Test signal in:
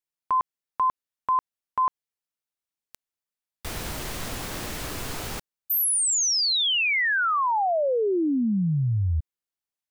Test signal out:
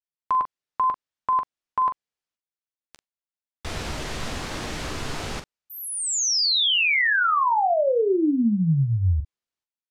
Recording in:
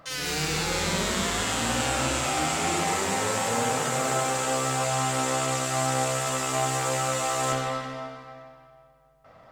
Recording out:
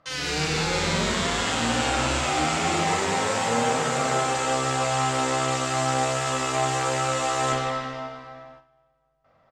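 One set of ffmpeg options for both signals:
-filter_complex "[0:a]agate=range=0.251:threshold=0.00447:ratio=16:release=307:detection=rms,lowpass=6500,asplit=2[s0][s1];[s1]aecho=0:1:13|43:0.224|0.335[s2];[s0][s2]amix=inputs=2:normalize=0,volume=1.26"

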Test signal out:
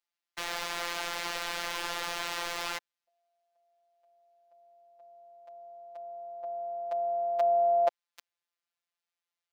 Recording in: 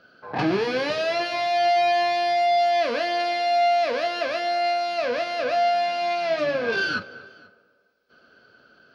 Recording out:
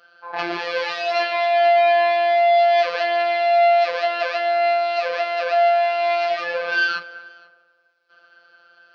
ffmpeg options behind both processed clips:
-filter_complex "[0:a]acrossover=split=500 5600:gain=0.0794 1 0.224[s0][s1][s2];[s0][s1][s2]amix=inputs=3:normalize=0,afftfilt=real='hypot(re,im)*cos(PI*b)':imag='0':win_size=1024:overlap=0.75,volume=2.24"

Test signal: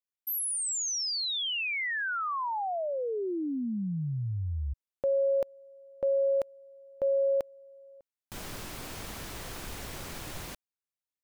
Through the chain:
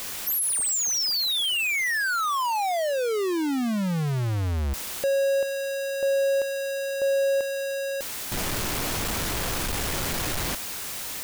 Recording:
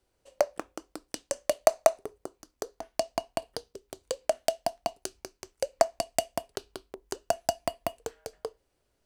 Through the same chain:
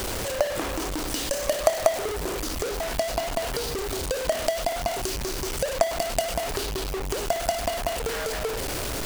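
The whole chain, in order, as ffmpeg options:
-af "aeval=exprs='val(0)+0.5*0.075*sgn(val(0))':c=same,volume=0.891"

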